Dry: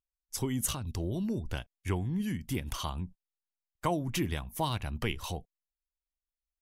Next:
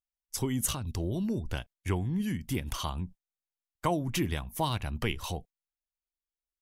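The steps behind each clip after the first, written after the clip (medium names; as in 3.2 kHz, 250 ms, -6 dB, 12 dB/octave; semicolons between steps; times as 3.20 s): gate -50 dBFS, range -8 dB; trim +1.5 dB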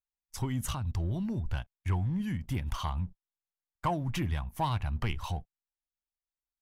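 FFT filter 100 Hz 0 dB, 460 Hz -12 dB, 840 Hz -1 dB, 9.7 kHz -14 dB; waveshaping leveller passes 1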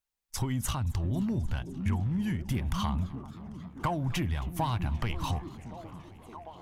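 compression, threshold -33 dBFS, peak gain reduction 8.5 dB; repeats whose band climbs or falls 622 ms, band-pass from 210 Hz, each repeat 0.7 oct, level -4.5 dB; modulated delay 264 ms, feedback 80%, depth 179 cents, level -21 dB; trim +6 dB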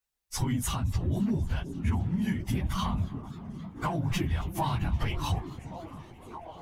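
phase randomisation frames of 50 ms; in parallel at +2 dB: peak limiter -23 dBFS, peak gain reduction 7.5 dB; on the sum: trim -5 dB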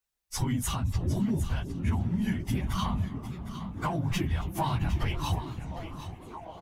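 delay 758 ms -12 dB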